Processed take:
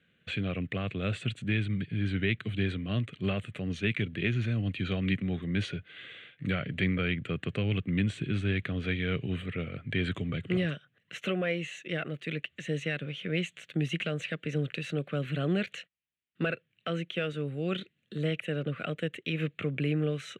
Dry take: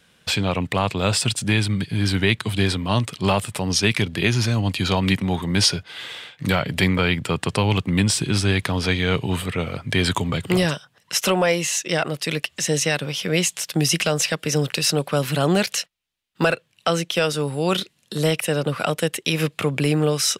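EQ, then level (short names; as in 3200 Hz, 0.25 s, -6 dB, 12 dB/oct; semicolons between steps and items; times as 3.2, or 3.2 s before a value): HPF 74 Hz; air absorption 160 m; fixed phaser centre 2200 Hz, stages 4; -7.5 dB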